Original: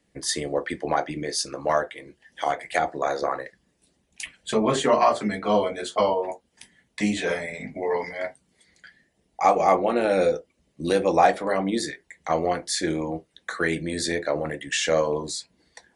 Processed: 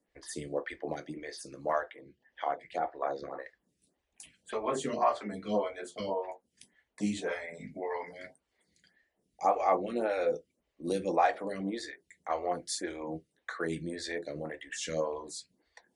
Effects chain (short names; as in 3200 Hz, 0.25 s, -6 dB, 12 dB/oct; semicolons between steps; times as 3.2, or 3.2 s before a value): 1.96–3.39 LPF 3400 Hz 12 dB/oct; photocell phaser 1.8 Hz; gain -7 dB